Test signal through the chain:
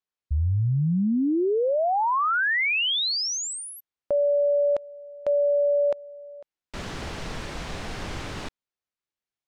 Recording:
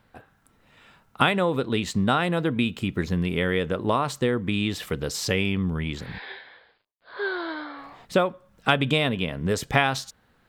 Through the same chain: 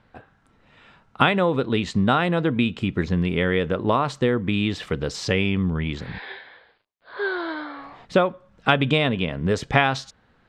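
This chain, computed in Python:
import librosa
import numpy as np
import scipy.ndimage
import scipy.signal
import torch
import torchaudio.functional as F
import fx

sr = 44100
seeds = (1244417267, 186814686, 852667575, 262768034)

y = fx.air_absorb(x, sr, metres=97.0)
y = y * librosa.db_to_amplitude(3.0)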